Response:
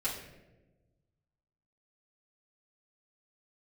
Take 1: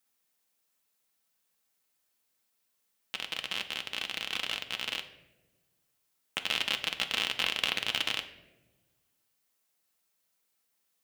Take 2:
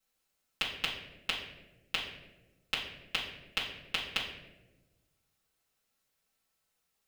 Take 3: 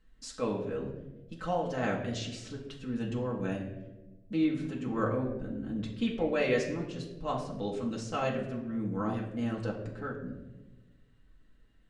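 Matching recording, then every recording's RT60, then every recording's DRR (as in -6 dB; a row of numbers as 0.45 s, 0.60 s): 2; 1.2 s, 1.1 s, 1.1 s; 6.0 dB, -10.0 dB, -3.5 dB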